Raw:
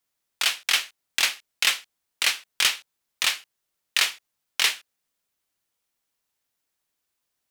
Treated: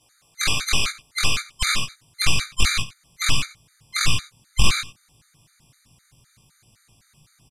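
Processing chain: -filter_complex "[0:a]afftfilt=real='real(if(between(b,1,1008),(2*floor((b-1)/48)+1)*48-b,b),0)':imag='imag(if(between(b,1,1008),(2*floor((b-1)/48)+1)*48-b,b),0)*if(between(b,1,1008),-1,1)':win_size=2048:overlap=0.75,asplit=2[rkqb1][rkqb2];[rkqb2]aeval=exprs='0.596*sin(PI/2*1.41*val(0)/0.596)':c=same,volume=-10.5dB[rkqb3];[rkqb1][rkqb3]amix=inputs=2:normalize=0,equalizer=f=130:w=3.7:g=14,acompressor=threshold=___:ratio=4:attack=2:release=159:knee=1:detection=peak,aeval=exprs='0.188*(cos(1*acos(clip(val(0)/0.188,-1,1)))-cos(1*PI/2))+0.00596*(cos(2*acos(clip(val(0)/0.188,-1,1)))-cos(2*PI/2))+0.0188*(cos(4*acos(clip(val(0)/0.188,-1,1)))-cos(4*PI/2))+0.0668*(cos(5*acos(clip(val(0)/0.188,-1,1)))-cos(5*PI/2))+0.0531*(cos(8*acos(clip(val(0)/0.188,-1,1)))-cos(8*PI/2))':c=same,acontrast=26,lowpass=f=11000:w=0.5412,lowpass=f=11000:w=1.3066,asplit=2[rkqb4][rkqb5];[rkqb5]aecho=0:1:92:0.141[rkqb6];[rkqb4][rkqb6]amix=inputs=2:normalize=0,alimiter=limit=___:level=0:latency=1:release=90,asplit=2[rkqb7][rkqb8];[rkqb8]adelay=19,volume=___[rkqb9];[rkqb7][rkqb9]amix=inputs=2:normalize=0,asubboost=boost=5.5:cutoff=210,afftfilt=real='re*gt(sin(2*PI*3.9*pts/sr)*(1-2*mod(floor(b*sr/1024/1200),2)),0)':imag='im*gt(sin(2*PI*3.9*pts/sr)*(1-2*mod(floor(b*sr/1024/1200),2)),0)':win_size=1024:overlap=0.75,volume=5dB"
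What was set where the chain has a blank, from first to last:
-31dB, -13dB, -3.5dB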